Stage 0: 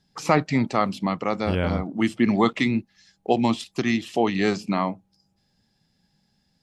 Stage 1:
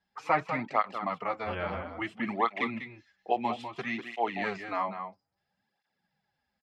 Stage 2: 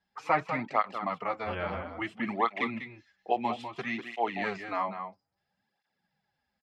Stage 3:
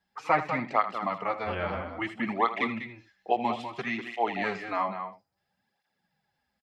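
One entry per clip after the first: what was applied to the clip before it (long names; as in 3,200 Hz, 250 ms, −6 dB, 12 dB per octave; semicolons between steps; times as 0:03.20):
three-way crossover with the lows and the highs turned down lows −15 dB, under 580 Hz, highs −19 dB, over 2,700 Hz; slap from a distant wall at 34 metres, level −8 dB; through-zero flanger with one copy inverted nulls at 0.6 Hz, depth 7.8 ms
no processing that can be heard
single-tap delay 79 ms −13.5 dB; level +2 dB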